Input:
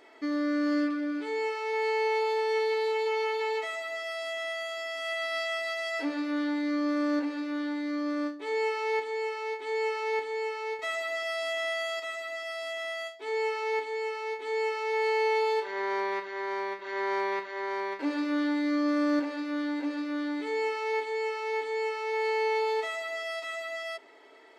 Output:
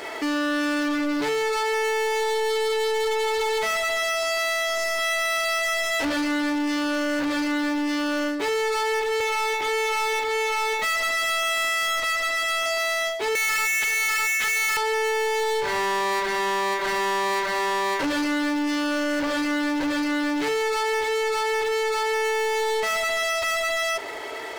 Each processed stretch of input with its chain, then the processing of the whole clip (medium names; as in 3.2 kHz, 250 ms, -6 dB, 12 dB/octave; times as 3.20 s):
9.20–12.66 s: high-pass 230 Hz + distance through air 150 m + comb 3.7 ms, depth 69%
13.35–14.77 s: elliptic band-pass 1.5–7.4 kHz + treble shelf 3.6 kHz -11 dB + waveshaping leveller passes 5
whole clip: high-pass 360 Hz 12 dB/octave; compression 3:1, threshold -33 dBFS; waveshaping leveller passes 5; trim +4 dB